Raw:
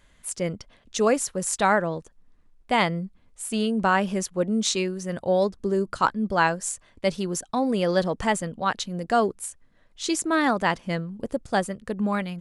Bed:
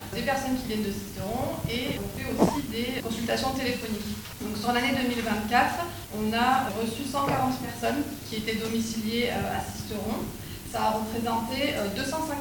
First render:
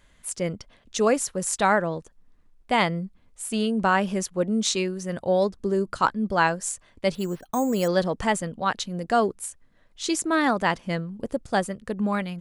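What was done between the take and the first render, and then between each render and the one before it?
7.15–7.88 careless resampling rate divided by 6×, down filtered, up hold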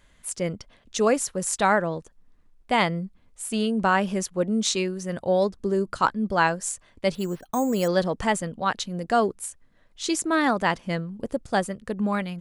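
nothing audible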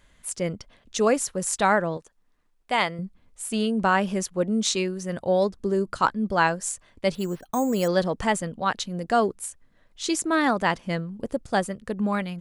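1.97–2.99 low shelf 310 Hz -12 dB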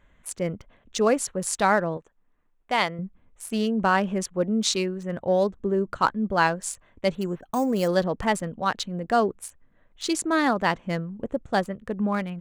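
Wiener smoothing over 9 samples; dynamic EQ 4600 Hz, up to +4 dB, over -52 dBFS, Q 3.9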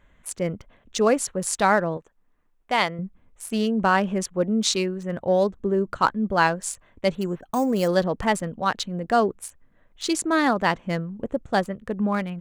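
gain +1.5 dB

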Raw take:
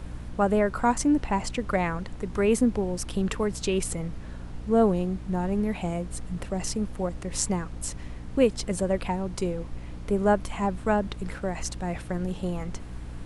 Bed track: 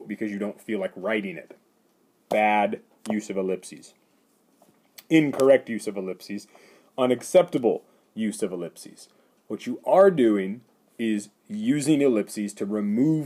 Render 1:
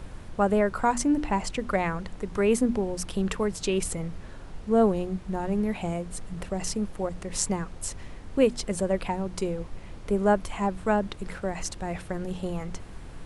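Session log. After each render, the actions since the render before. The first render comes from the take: notches 60/120/180/240/300 Hz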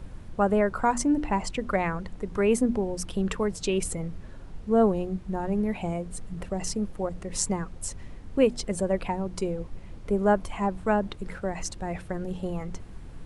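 denoiser 6 dB, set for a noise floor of -42 dBFS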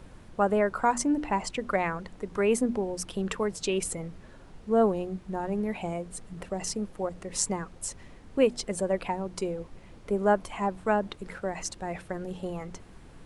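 low shelf 160 Hz -10.5 dB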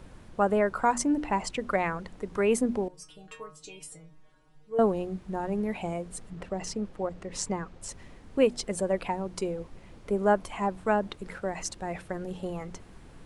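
2.88–4.79 metallic resonator 150 Hz, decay 0.34 s, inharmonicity 0.002; 6.3–7.89 air absorption 67 m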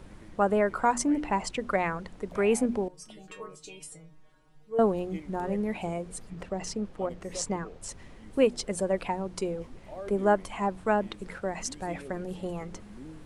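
add bed track -24.5 dB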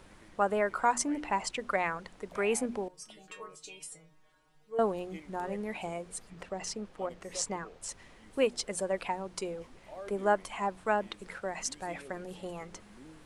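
low shelf 440 Hz -10.5 dB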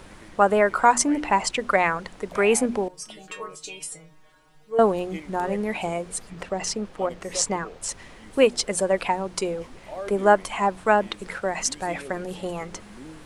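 gain +10 dB

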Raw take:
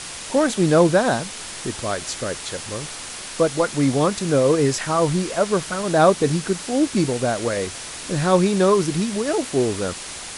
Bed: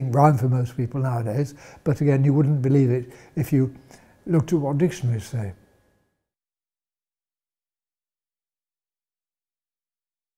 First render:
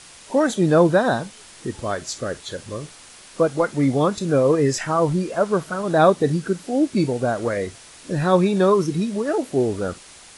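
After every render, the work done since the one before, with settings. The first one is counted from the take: noise print and reduce 11 dB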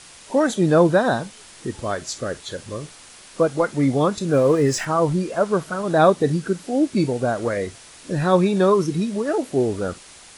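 4.33–4.85 zero-crossing step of -35.5 dBFS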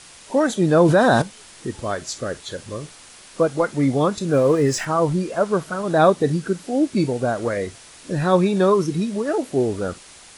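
0.81–1.22 fast leveller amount 70%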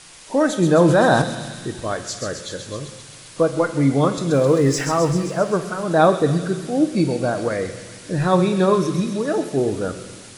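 thin delay 0.131 s, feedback 71%, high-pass 2800 Hz, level -5 dB; shoebox room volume 780 m³, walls mixed, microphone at 0.54 m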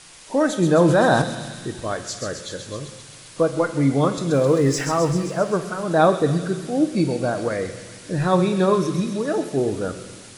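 gain -1.5 dB

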